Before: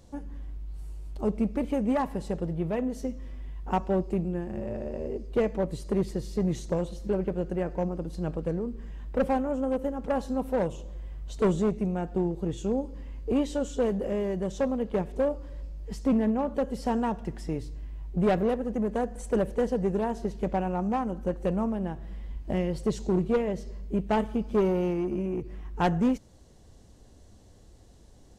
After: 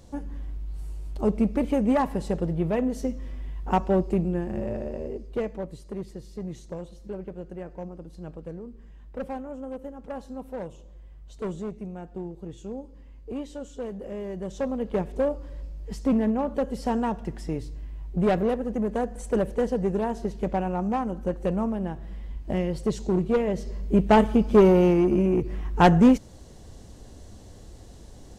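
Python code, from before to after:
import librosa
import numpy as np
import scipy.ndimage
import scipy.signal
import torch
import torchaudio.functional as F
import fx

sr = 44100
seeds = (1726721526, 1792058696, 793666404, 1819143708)

y = fx.gain(x, sr, db=fx.line((4.64, 4.0), (5.88, -8.0), (13.9, -8.0), (14.95, 1.5), (23.27, 1.5), (24.02, 8.5)))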